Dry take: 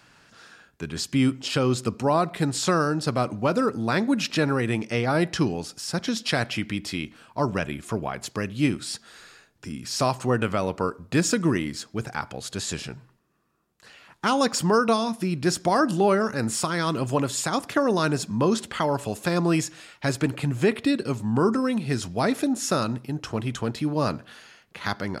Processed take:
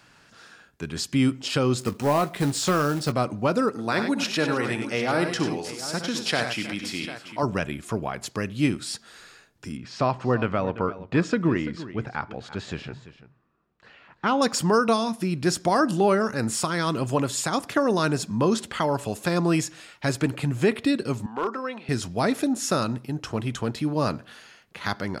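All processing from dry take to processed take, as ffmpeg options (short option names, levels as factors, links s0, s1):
-filter_complex "[0:a]asettb=1/sr,asplit=3[s0][s1][s2];[s0]atrim=end=1.794[s3];[s1]atrim=start=1.79:end=3.12,asetpts=PTS-STARTPTS,afade=t=in:d=0.004:c=qsin,afade=t=out:st=1.326:d=0.004:c=qsin,acrusher=bits=4:mode=log:mix=0:aa=0.000001,volume=5.96,asoftclip=hard,volume=0.168,asplit=2[s4][s5];[s5]adelay=21,volume=0.251[s6];[s4][s6]amix=inputs=2:normalize=0,atrim=end_sample=58653[s7];[s2]atrim=start=3.116[s8];[s3][s7]acrossfade=d=0.004:c1=hsin:c2=qsin[s9];[s9][s8]acrossfade=d=0.004:c1=qsin:c2=hsin,asettb=1/sr,asplit=3[s10][s11][s12];[s10]atrim=end=3.694[s13];[s11]atrim=start=3.69:end=7.43,asetpts=PTS-STARTPTS,afade=t=in:d=0.004:c=qsin,afade=t=out:st=3.736:d=0.004:c=qsin,highpass=f=270:p=1,aecho=1:1:64|97|315|748:0.299|0.422|0.133|0.224,atrim=end_sample=164934[s14];[s12]atrim=start=7.426[s15];[s13][s14]acrossfade=d=0.004:c1=hsin:c2=qsin[s16];[s16][s15]acrossfade=d=0.004:c1=qsin:c2=hsin,asettb=1/sr,asplit=3[s17][s18][s19];[s17]atrim=end=9.774[s20];[s18]atrim=start=9.77:end=14.42,asetpts=PTS-STARTPTS,afade=t=in:d=0.004:c=qsin,afade=t=out:st=4.646:d=0.004:c=qsin,lowpass=2800,aecho=1:1:339:0.178,atrim=end_sample=205065[s21];[s19]atrim=start=14.416[s22];[s20][s21]acrossfade=d=0.004:c1=hsin:c2=qsin[s23];[s23][s22]acrossfade=d=0.004:c1=qsin:c2=hsin,asettb=1/sr,asplit=3[s24][s25][s26];[s24]atrim=end=21.264[s27];[s25]atrim=start=21.26:end=21.89,asetpts=PTS-STARTPTS,afade=t=in:d=0.004:c=qsin,afade=t=out:st=0.626:d=0.004:c=qsin,highpass=550,lowpass=3000,volume=9.44,asoftclip=hard,volume=0.106[s28];[s26]atrim=start=21.886[s29];[s27][s28]acrossfade=d=0.004:c1=hsin:c2=qsin[s30];[s30][s29]acrossfade=d=0.004:c1=qsin:c2=hsin"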